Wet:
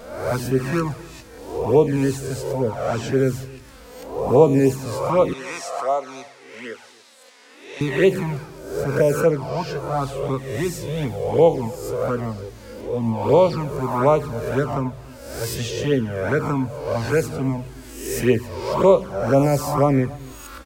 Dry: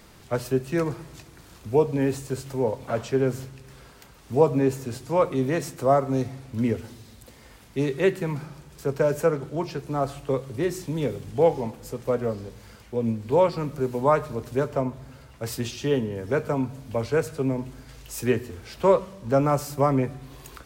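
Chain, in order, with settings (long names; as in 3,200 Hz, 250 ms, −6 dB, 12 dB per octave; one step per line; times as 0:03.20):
peak hold with a rise ahead of every peak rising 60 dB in 0.88 s
flanger swept by the level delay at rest 4.6 ms, full sweep at −14.5 dBFS
0:05.33–0:07.81: band-pass filter 780–7,900 Hz
slap from a distant wall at 48 metres, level −23 dB
level +5 dB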